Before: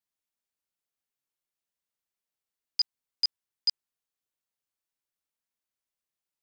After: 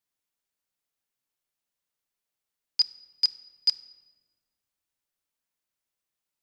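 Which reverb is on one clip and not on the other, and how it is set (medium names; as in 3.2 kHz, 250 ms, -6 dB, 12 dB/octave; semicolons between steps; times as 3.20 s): simulated room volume 1200 m³, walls mixed, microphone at 0.34 m; trim +3 dB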